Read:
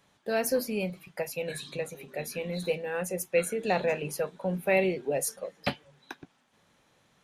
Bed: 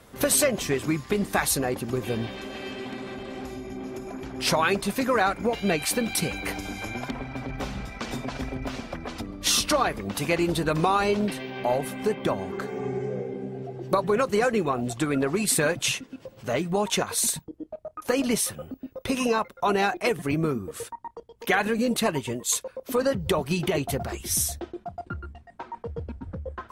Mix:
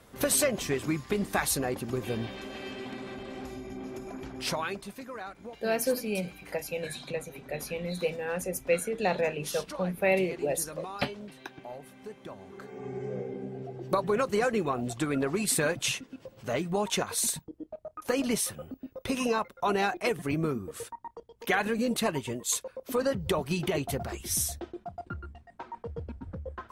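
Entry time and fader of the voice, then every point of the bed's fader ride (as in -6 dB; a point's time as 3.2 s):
5.35 s, -0.5 dB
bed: 4.27 s -4 dB
5.08 s -18 dB
12.29 s -18 dB
13.16 s -4 dB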